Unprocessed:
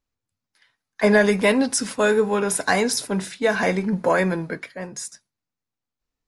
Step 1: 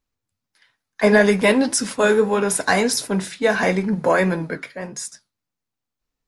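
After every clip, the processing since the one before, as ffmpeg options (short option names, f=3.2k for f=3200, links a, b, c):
-af "flanger=delay=4.2:depth=6.5:regen=-77:speed=1.6:shape=triangular,volume=6.5dB"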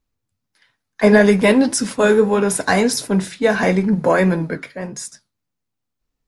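-af "lowshelf=f=410:g=6"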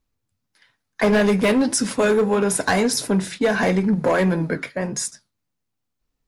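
-af "volume=10dB,asoftclip=hard,volume=-10dB,agate=range=-8dB:threshold=-34dB:ratio=16:detection=peak,acompressor=threshold=-34dB:ratio=2,volume=8.5dB"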